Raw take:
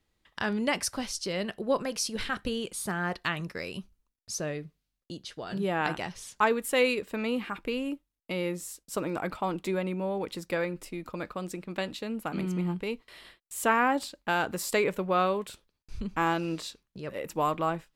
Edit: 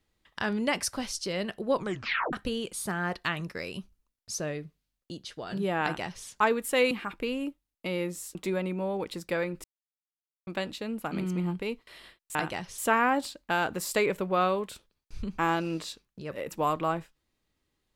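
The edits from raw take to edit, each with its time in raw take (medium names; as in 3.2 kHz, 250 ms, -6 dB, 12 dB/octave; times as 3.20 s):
1.75 s: tape stop 0.58 s
5.82–6.25 s: copy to 13.56 s
6.91–7.36 s: delete
8.80–9.56 s: delete
10.85–11.68 s: mute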